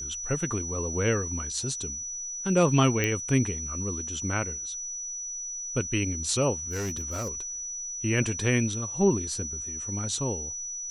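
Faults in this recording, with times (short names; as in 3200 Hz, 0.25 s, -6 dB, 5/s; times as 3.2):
tone 5900 Hz -33 dBFS
3.04 pop -12 dBFS
6.7–7.4 clipped -27.5 dBFS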